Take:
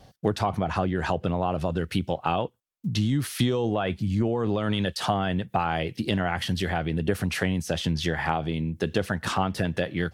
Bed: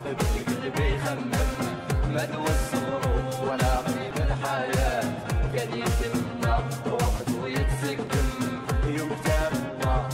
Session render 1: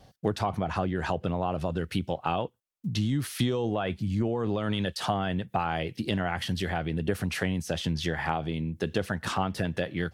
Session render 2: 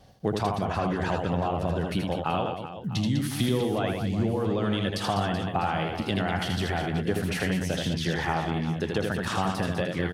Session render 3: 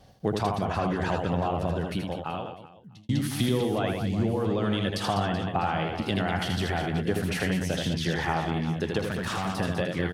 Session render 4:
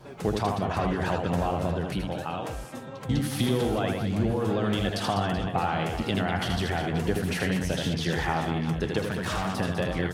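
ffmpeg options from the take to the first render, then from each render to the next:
-af "volume=-3dB"
-af "aecho=1:1:80|200|380|650|1055:0.631|0.398|0.251|0.158|0.1"
-filter_complex "[0:a]asettb=1/sr,asplit=3[a][b][c];[a]atrim=end=5.184[d];[b]atrim=start=5.18:end=6.03,asetpts=PTS-STARTPTS,afade=t=in:d=0.004:c=qsin,afade=t=out:st=0.846:d=0.004:c=qsin,highshelf=f=10k:g=-11[e];[c]atrim=start=6.026[f];[d][e]acrossfade=d=0.004:c1=hsin:c2=qsin[g];[g][f]acrossfade=d=0.004:c1=qsin:c2=hsin,asettb=1/sr,asplit=3[h][i][j];[h]atrim=end=8.994[k];[i]atrim=start=8.99:end=9.56,asetpts=PTS-STARTPTS,afade=t=in:d=0.004:c=qsin,afade=t=out:st=0.566:d=0.004:c=qsin,asoftclip=type=hard:threshold=-25.5dB[l];[j]atrim=start=9.556[m];[k][l]acrossfade=d=0.004:c1=hsin:c2=qsin[n];[n][m]acrossfade=d=0.004:c1=qsin:c2=hsin,asplit=2[o][p];[o]atrim=end=3.09,asetpts=PTS-STARTPTS,afade=t=out:st=1.6:d=1.49[q];[p]atrim=start=3.09,asetpts=PTS-STARTPTS,afade=t=in:d=0.004:c=hsin[r];[q][r]concat=n=2:v=0:a=1"
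-filter_complex "[1:a]volume=-12.5dB[a];[0:a][a]amix=inputs=2:normalize=0"

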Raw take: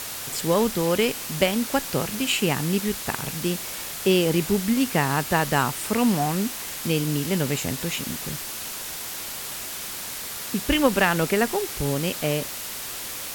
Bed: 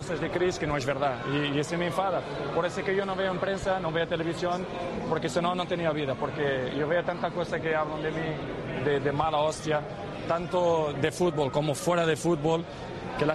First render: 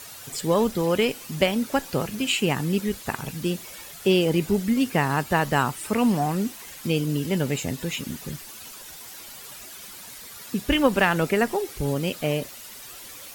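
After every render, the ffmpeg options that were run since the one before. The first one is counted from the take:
-af "afftdn=nr=11:nf=-34"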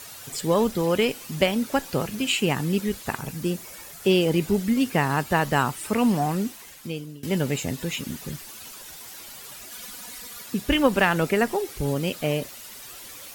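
-filter_complex "[0:a]asettb=1/sr,asplit=3[a][b][c];[a]atrim=end=3.184[d];[b]atrim=start=3.18:end=4.04,asetpts=PTS-STARTPTS,afade=t=in:d=0.004:c=qsin,afade=t=out:st=0.856:d=0.004:c=qsin,equalizer=f=3.3k:w=1.5:g=-5[e];[c]atrim=start=4.036[f];[d][e]acrossfade=d=0.004:c1=hsin:c2=qsin[g];[g][f]acrossfade=d=0.004:c1=qsin:c2=hsin,asettb=1/sr,asplit=3[h][i][j];[h]atrim=end=9.714[k];[i]atrim=start=9.71:end=10.42,asetpts=PTS-STARTPTS,afade=t=in:d=0.004:c=qsin,afade=t=out:st=0.706:d=0.004:c=qsin,aecho=1:1:4.1:0.79,atrim=end_sample=31311[l];[j]atrim=start=10.416[m];[k][l]acrossfade=d=0.004:c1=hsin:c2=qsin[n];[n][m]acrossfade=d=0.004:c1=qsin:c2=hsin,asplit=2[o][p];[o]atrim=end=7.23,asetpts=PTS-STARTPTS,afade=t=out:st=6.34:d=0.89:silence=0.0749894[q];[p]atrim=start=7.23,asetpts=PTS-STARTPTS,afade=t=in:d=0.004:c=hsin:silence=0.0749894[r];[q][r]concat=n=2:v=0:a=1"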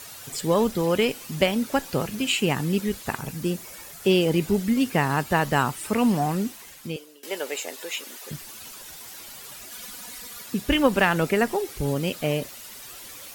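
-filter_complex "[0:a]asettb=1/sr,asplit=3[a][b][c];[a]atrim=end=6.964[d];[b]atrim=start=6.96:end=8.31,asetpts=PTS-STARTPTS,afade=t=in:d=0.004:c=qsin,afade=t=out:st=1.346:d=0.004:c=qsin,highpass=f=420:w=0.5412,highpass=f=420:w=1.3066[e];[c]atrim=start=8.306[f];[d][e]acrossfade=d=0.004:c1=hsin:c2=qsin[g];[g][f]acrossfade=d=0.004:c1=qsin:c2=hsin"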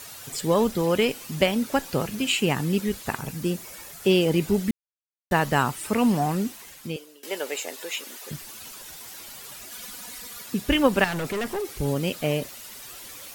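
-filter_complex "[0:a]asettb=1/sr,asplit=3[a][b][c];[a]atrim=end=11.044[d];[b]atrim=start=11.04:end=11.68,asetpts=PTS-STARTPTS,afade=t=in:d=0.004:c=qsin,afade=t=out:st=0.636:d=0.004:c=qsin,volume=25.5dB,asoftclip=hard,volume=-25.5dB[e];[c]atrim=start=11.676[f];[d][e]acrossfade=d=0.004:c1=hsin:c2=qsin[g];[g][f]acrossfade=d=0.004:c1=qsin:c2=hsin,asplit=3[h][i][j];[h]atrim=end=4.71,asetpts=PTS-STARTPTS,afade=t=out:st=4.706:d=0.004:c=hsin[k];[i]atrim=start=4.71:end=5.31,asetpts=PTS-STARTPTS,volume=0[l];[j]atrim=start=5.31,asetpts=PTS-STARTPTS,afade=t=in:d=0.004:c=hsin[m];[k][l][m]concat=n=3:v=0:a=1"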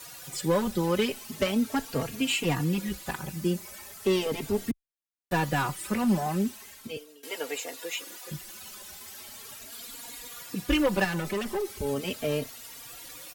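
-filter_complex "[0:a]acrossover=split=110[a][b];[b]asoftclip=type=hard:threshold=-17dB[c];[a][c]amix=inputs=2:normalize=0,asplit=2[d][e];[e]adelay=3.7,afreqshift=0.38[f];[d][f]amix=inputs=2:normalize=1"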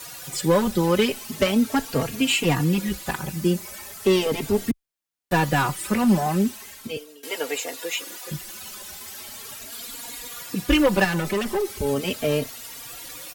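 -af "volume=6dB"

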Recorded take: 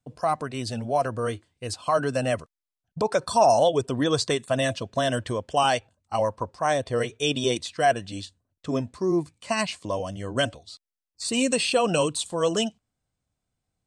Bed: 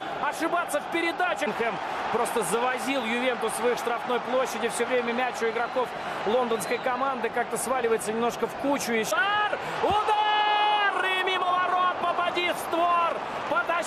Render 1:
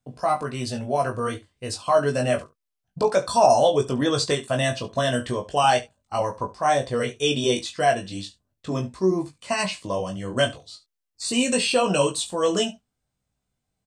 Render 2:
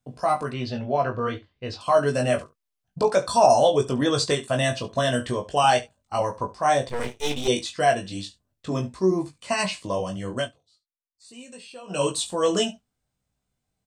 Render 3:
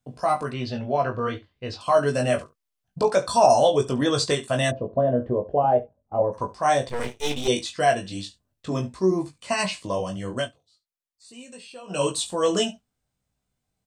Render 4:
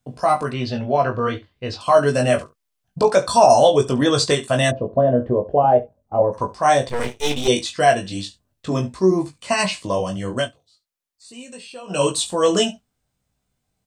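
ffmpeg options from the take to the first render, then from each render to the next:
-filter_complex "[0:a]asplit=2[a][b];[b]adelay=21,volume=-6dB[c];[a][c]amix=inputs=2:normalize=0,aecho=1:1:16|70:0.501|0.141"
-filter_complex "[0:a]asettb=1/sr,asplit=3[a][b][c];[a]atrim=end=0.534[d];[b]atrim=start=0.53:end=1.81,asetpts=PTS-STARTPTS,afade=t=in:d=0.004:c=qsin,afade=t=out:st=1.276:d=0.004:c=qsin,lowpass=f=4.4k:w=0.5412,lowpass=f=4.4k:w=1.3066[e];[c]atrim=start=1.806[f];[d][e]acrossfade=d=0.004:c1=hsin:c2=qsin[g];[g][f]acrossfade=d=0.004:c1=qsin:c2=hsin,asettb=1/sr,asplit=3[h][i][j];[h]atrim=end=6.894[k];[i]atrim=start=6.89:end=7.48,asetpts=PTS-STARTPTS,afade=t=in:d=0.004:c=qsin,afade=t=out:st=0.586:d=0.004:c=qsin,aeval=exprs='max(val(0),0)':c=same[l];[j]atrim=start=7.476[m];[k][l]acrossfade=d=0.004:c1=hsin:c2=qsin[n];[n][m]acrossfade=d=0.004:c1=qsin:c2=hsin,asplit=3[o][p][q];[o]atrim=end=10.51,asetpts=PTS-STARTPTS,afade=t=out:st=10.29:d=0.22:silence=0.0841395[r];[p]atrim=start=10.51:end=11.87,asetpts=PTS-STARTPTS,volume=-21.5dB[s];[q]atrim=start=11.87,asetpts=PTS-STARTPTS,afade=t=in:d=0.22:silence=0.0841395[t];[r][s][t]concat=n=3:v=0:a=1"
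-filter_complex "[0:a]asplit=3[a][b][c];[a]afade=t=out:st=4.7:d=0.02[d];[b]lowpass=f=560:t=q:w=1.7,afade=t=in:st=4.7:d=0.02,afade=t=out:st=6.32:d=0.02[e];[c]afade=t=in:st=6.32:d=0.02[f];[d][e][f]amix=inputs=3:normalize=0"
-af "volume=5dB,alimiter=limit=-2dB:level=0:latency=1"

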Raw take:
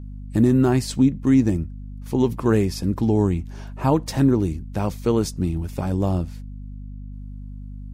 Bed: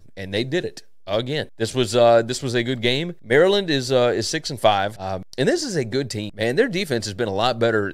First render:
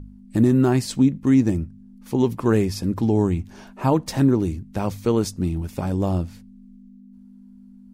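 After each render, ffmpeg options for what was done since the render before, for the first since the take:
-af "bandreject=f=50:t=h:w=4,bandreject=f=100:t=h:w=4,bandreject=f=150:t=h:w=4"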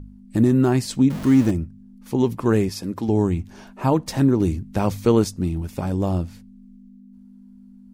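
-filter_complex "[0:a]asettb=1/sr,asplit=3[a][b][c];[a]atrim=end=1.104[d];[b]atrim=start=1.1:end=1.51,asetpts=PTS-STARTPTS,afade=t=in:d=0.004:c=qsin,afade=t=out:st=0.406:d=0.004:c=qsin,aeval=exprs='val(0)+0.5*0.0447*sgn(val(0))':c=same[e];[c]atrim=start=1.506[f];[d][e]acrossfade=d=0.004:c1=hsin:c2=qsin[g];[g][f]acrossfade=d=0.004:c1=qsin:c2=hsin,asettb=1/sr,asplit=3[h][i][j];[h]atrim=end=2.694[k];[i]atrim=start=2.69:end=3.09,asetpts=PTS-STARTPTS,afade=t=in:d=0.004:c=qsin,afade=t=out:st=0.396:d=0.004:c=qsin,highpass=f=290:p=1[l];[j]atrim=start=3.086[m];[k][l]acrossfade=d=0.004:c1=hsin:c2=qsin[n];[n][m]acrossfade=d=0.004:c1=qsin:c2=hsin,asplit=3[o][p][q];[o]atrim=end=4.402[r];[p]atrim=start=4.398:end=5.242,asetpts=PTS-STARTPTS,volume=3.5dB[s];[q]atrim=start=5.238[t];[r][s]acrossfade=d=0.004:c1=hsin:c2=hsin[u];[u][t]acrossfade=d=0.004:c1=hsin:c2=hsin"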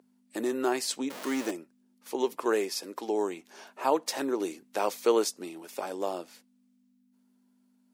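-af "highpass=f=400:w=0.5412,highpass=f=400:w=1.3066,equalizer=f=720:w=0.31:g=-3"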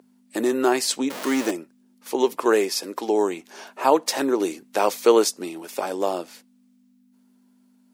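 -af "volume=8dB"

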